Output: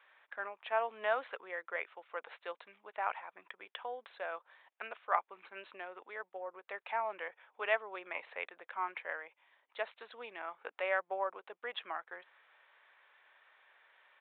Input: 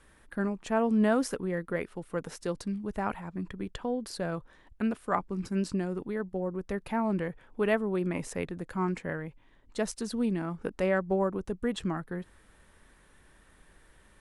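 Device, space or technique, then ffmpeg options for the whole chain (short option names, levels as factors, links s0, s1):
musical greeting card: -af "aresample=8000,aresample=44100,highpass=f=640:w=0.5412,highpass=f=640:w=1.3066,equalizer=f=2300:t=o:w=0.33:g=4.5,volume=0.841"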